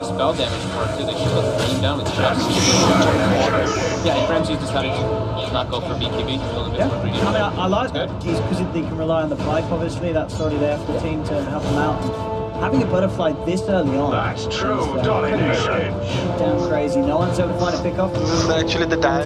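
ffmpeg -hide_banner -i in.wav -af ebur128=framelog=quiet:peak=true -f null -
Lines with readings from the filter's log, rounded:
Integrated loudness:
  I:         -20.0 LUFS
  Threshold: -30.0 LUFS
Loudness range:
  LRA:         4.1 LU
  Threshold: -40.1 LUFS
  LRA low:   -21.8 LUFS
  LRA high:  -17.6 LUFS
True peak:
  Peak:       -3.2 dBFS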